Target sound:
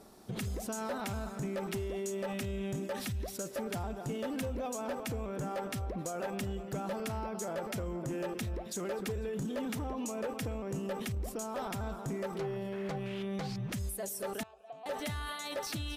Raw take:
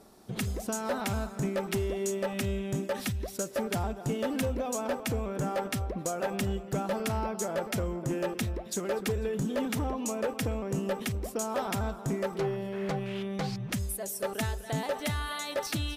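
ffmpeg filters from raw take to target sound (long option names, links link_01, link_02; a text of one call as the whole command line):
ffmpeg -i in.wav -filter_complex "[0:a]asettb=1/sr,asplit=3[link_01][link_02][link_03];[link_01]atrim=end=11.084[link_04];[link_02]atrim=start=11.08:end=11.79,asetpts=PTS-STARTPTS,afade=type=in:duration=0.004:curve=qsin,afade=type=out:start_time=0.706:duration=0.004:curve=qsin,lowshelf=frequency=68:gain=11[link_05];[link_03]atrim=start=11.786[link_06];[link_04][link_05]acrossfade=duration=0.004:curve1=hsin:curve2=qsin[link_07];[link_07][link_06]acrossfade=duration=0.004:curve1=qsin:curve2=hsin,alimiter=level_in=6.5dB:limit=-24dB:level=0:latency=1:release=25,volume=-6.5dB,asettb=1/sr,asplit=3[link_08][link_09][link_10];[link_08]atrim=end=14.434[link_11];[link_09]atrim=start=14.43:end=14.86,asetpts=PTS-STARTPTS,afade=type=in:duration=0.004:curve=qsin,afade=type=out:start_time=0.426:duration=0.004:curve=qsin,asplit=3[link_12][link_13][link_14];[link_12]bandpass=frequency=730:width_type=q:width=8,volume=0dB[link_15];[link_13]bandpass=frequency=1090:width_type=q:width=8,volume=-6dB[link_16];[link_14]bandpass=frequency=2440:width_type=q:width=8,volume=-9dB[link_17];[link_15][link_16][link_17]amix=inputs=3:normalize=0[link_18];[link_10]atrim=start=14.856[link_19];[link_11][link_18]acrossfade=duration=0.004:curve1=hsin:curve2=qsin[link_20];[link_20][link_19]acrossfade=duration=0.004:curve1=qsin:curve2=hsin" out.wav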